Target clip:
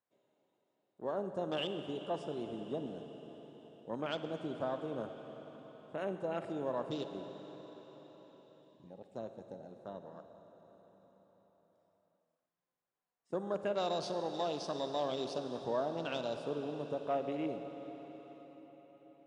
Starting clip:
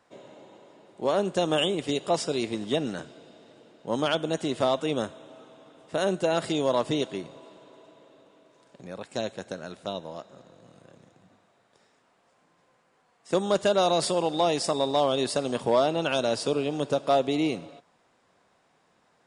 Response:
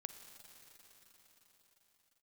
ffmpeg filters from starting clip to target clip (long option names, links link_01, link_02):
-filter_complex "[0:a]afwtdn=0.0178[link_01];[1:a]atrim=start_sample=2205,asetrate=41454,aresample=44100[link_02];[link_01][link_02]afir=irnorm=-1:irlink=0,volume=-8dB"